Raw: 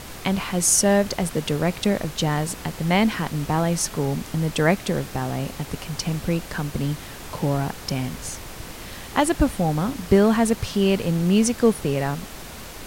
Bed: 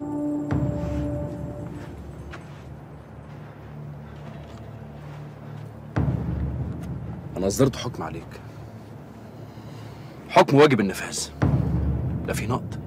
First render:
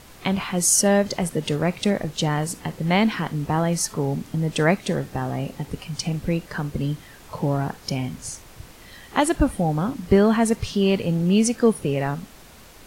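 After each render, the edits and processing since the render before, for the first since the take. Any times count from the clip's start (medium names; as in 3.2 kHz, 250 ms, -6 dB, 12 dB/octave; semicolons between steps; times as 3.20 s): noise print and reduce 9 dB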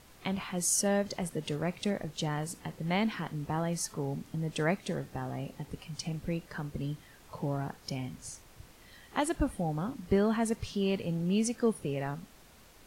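trim -10.5 dB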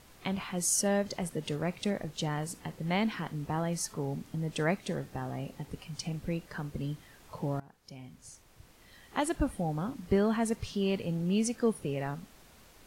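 7.60–9.29 s: fade in, from -20.5 dB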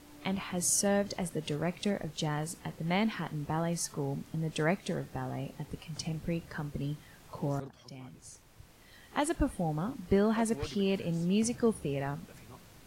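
add bed -27 dB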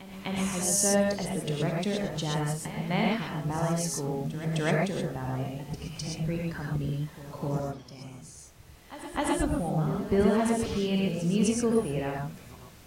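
pre-echo 257 ms -14 dB; gated-style reverb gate 150 ms rising, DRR -1.5 dB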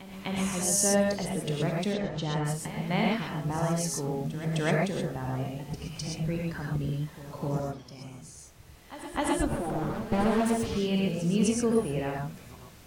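1.93–2.45 s: distance through air 110 m; 9.48–10.67 s: comb filter that takes the minimum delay 8.8 ms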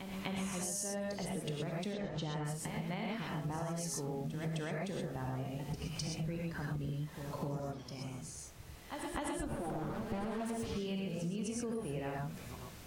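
peak limiter -20 dBFS, peak gain reduction 7 dB; compression, threshold -36 dBFS, peak gain reduction 11.5 dB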